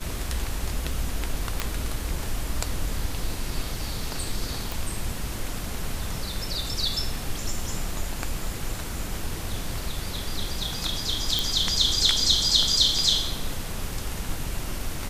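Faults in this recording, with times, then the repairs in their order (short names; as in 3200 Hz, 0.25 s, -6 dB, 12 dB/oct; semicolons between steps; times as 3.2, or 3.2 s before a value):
1.6 pop
4.72 pop
11.39 pop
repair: de-click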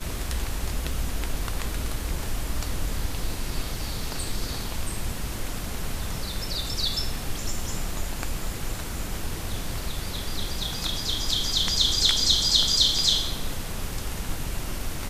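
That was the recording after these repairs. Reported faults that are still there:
none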